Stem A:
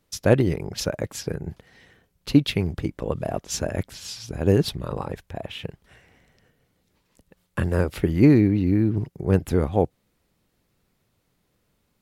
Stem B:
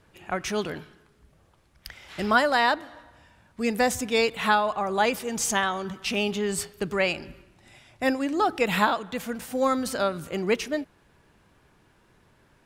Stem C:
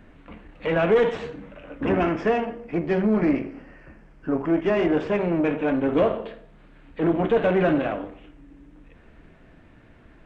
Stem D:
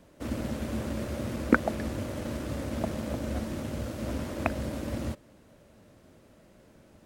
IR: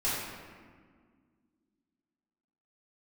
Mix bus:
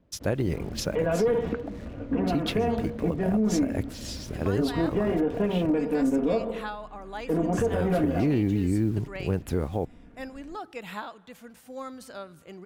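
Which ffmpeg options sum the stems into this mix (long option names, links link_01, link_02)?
-filter_complex "[0:a]acrusher=bits=7:mix=0:aa=0.5,volume=-3.5dB[link_01];[1:a]adelay=2150,volume=-14.5dB[link_02];[2:a]tiltshelf=frequency=970:gain=6.5,aecho=1:1:4.2:0.59,adelay=300,volume=-5.5dB[link_03];[3:a]lowpass=4000,lowshelf=frequency=420:gain=10.5,volume=-15dB[link_04];[link_01][link_02][link_03][link_04]amix=inputs=4:normalize=0,alimiter=limit=-16.5dB:level=0:latency=1:release=128"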